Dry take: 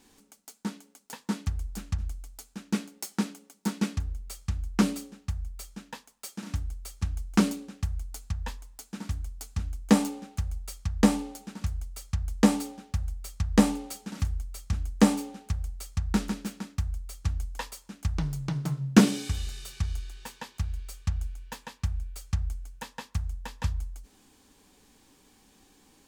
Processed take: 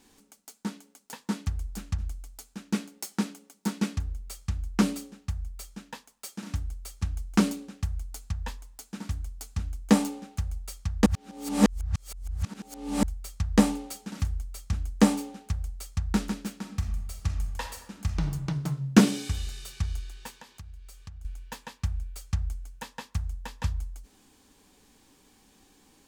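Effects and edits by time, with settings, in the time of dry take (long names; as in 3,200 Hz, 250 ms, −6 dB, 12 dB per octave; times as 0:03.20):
0:11.06–0:13.03: reverse
0:16.60–0:18.28: thrown reverb, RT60 0.96 s, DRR 5 dB
0:20.30–0:21.25: downward compressor 2.5 to 1, threshold −47 dBFS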